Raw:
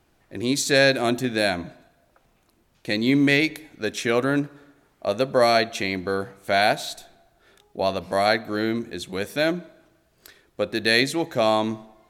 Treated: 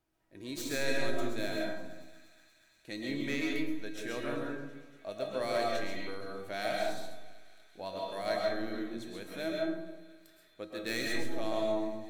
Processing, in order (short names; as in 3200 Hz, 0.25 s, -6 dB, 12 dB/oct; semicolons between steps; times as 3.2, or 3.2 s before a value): tracing distortion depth 0.036 ms; high shelf 11000 Hz +5 dB; resonator 320 Hz, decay 0.45 s, harmonics all, mix 80%; thinning echo 0.238 s, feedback 82%, high-pass 720 Hz, level -21 dB; reverb RT60 1.1 s, pre-delay 90 ms, DRR -1.5 dB; gain -6 dB